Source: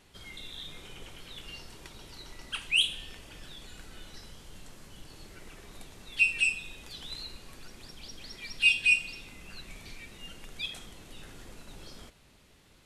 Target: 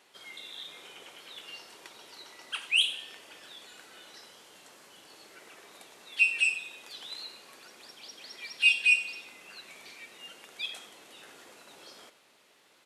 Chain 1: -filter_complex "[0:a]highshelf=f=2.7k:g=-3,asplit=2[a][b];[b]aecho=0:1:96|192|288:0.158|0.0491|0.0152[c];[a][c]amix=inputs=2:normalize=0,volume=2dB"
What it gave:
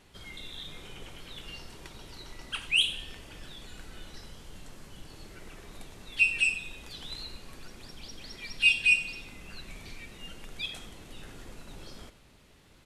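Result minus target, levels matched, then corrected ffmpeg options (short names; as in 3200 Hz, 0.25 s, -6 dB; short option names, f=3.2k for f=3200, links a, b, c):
500 Hz band +3.5 dB
-filter_complex "[0:a]highpass=460,highshelf=f=2.7k:g=-3,asplit=2[a][b];[b]aecho=0:1:96|192|288:0.158|0.0491|0.0152[c];[a][c]amix=inputs=2:normalize=0,volume=2dB"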